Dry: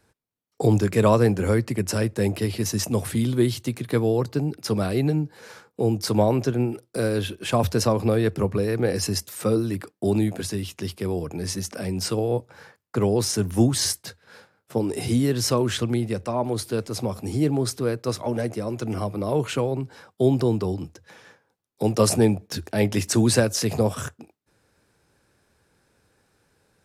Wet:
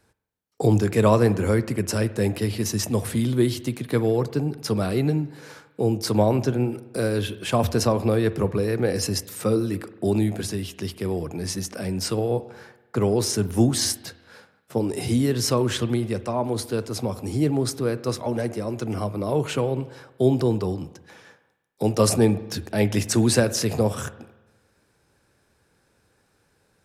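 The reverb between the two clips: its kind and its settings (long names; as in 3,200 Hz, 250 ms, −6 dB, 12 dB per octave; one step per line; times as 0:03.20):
spring reverb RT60 1.1 s, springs 47 ms, chirp 60 ms, DRR 14.5 dB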